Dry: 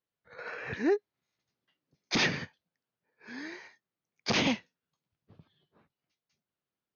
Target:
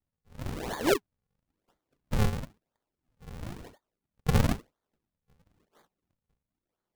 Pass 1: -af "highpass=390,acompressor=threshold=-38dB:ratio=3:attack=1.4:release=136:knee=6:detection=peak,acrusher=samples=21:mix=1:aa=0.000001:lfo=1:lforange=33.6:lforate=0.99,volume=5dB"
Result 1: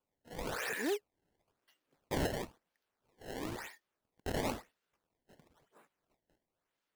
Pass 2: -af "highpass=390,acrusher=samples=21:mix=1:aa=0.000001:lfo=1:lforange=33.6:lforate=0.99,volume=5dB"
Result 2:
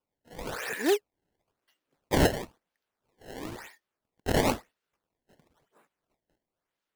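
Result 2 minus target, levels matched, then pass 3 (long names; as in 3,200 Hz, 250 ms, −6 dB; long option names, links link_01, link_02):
sample-and-hold swept by an LFO: distortion −12 dB
-af "highpass=390,acrusher=samples=79:mix=1:aa=0.000001:lfo=1:lforange=126:lforate=0.99,volume=5dB"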